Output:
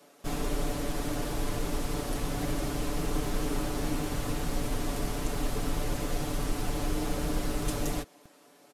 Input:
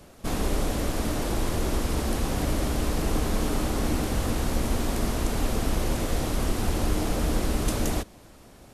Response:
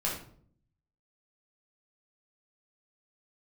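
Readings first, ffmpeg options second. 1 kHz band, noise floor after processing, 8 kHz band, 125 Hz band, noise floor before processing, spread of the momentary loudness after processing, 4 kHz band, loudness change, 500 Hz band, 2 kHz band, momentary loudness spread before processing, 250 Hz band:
-4.5 dB, -59 dBFS, -4.5 dB, -6.0 dB, -50 dBFS, 1 LU, -4.5 dB, -5.0 dB, -4.5 dB, -4.5 dB, 1 LU, -5.0 dB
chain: -filter_complex "[0:a]aecho=1:1:6.9:0.71,acrossover=split=210|1800[a][b][c];[a]acrusher=bits=6:mix=0:aa=0.000001[d];[d][b][c]amix=inputs=3:normalize=0,volume=-6.5dB"

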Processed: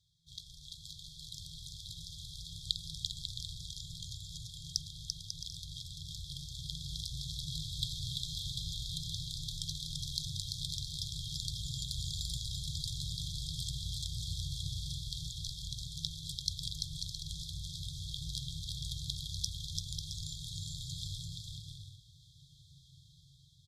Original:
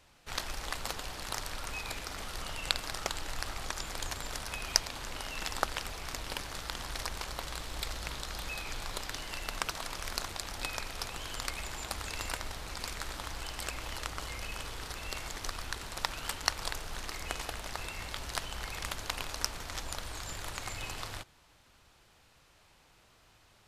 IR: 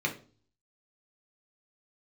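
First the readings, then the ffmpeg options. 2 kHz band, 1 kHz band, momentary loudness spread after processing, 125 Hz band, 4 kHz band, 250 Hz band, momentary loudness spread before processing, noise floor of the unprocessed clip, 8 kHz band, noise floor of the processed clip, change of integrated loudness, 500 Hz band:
under -40 dB, under -40 dB, 9 LU, +5.5 dB, +0.5 dB, n/a, 7 LU, -63 dBFS, -3.5 dB, -61 dBFS, -2.0 dB, under -40 dB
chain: -filter_complex "[0:a]asplit=2[a][b];[b]asubboost=boost=11.5:cutoff=140[c];[1:a]atrim=start_sample=2205,asetrate=39690,aresample=44100[d];[c][d]afir=irnorm=-1:irlink=0,volume=-23dB[e];[a][e]amix=inputs=2:normalize=0,dynaudnorm=f=550:g=5:m=11.5dB,afftfilt=real='re*(1-between(b*sr/4096,170,3200))':imag='im*(1-between(b*sr/4096,170,3200))':win_size=4096:overlap=0.75,asplit=3[f][g][h];[f]bandpass=f=300:t=q:w=8,volume=0dB[i];[g]bandpass=f=870:t=q:w=8,volume=-6dB[j];[h]bandpass=f=2.24k:t=q:w=8,volume=-9dB[k];[i][j][k]amix=inputs=3:normalize=0,highshelf=f=7.7k:g=4,aecho=1:1:340|544|666.4|739.8|783.9:0.631|0.398|0.251|0.158|0.1,volume=17dB"

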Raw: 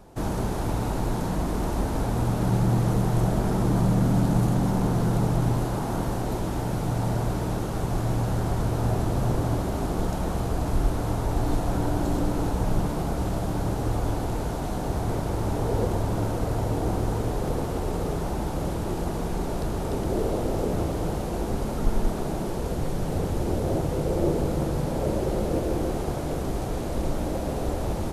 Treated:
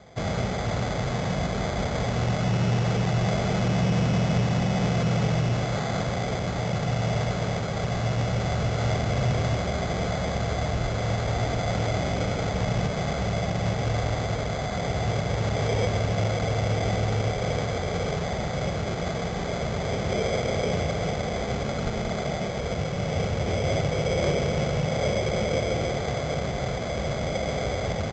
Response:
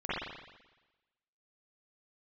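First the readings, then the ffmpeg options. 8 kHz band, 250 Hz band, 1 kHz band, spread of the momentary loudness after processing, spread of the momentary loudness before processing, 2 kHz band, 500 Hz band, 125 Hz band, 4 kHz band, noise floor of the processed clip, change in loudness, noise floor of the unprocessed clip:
+1.5 dB, -2.5 dB, +1.0 dB, 5 LU, 6 LU, +8.5 dB, +2.0 dB, +0.5 dB, +8.5 dB, -30 dBFS, +0.5 dB, -29 dBFS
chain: -filter_complex "[0:a]highpass=96,aecho=1:1:1.6:0.72,acrusher=samples=16:mix=1:aa=0.000001,volume=19.5dB,asoftclip=hard,volume=-19.5dB,asplit=2[a][b];[1:a]atrim=start_sample=2205,asetrate=33516,aresample=44100[c];[b][c]afir=irnorm=-1:irlink=0,volume=-21.5dB[d];[a][d]amix=inputs=2:normalize=0,aresample=16000,aresample=44100"

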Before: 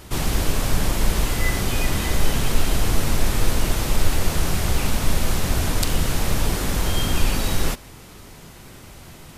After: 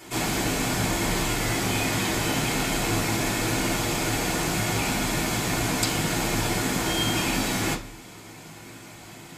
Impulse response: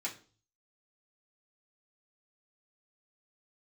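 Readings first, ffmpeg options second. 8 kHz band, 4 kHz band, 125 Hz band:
+0.5 dB, +0.5 dB, -4.5 dB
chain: -filter_complex "[1:a]atrim=start_sample=2205[a];[0:a][a]afir=irnorm=-1:irlink=0"

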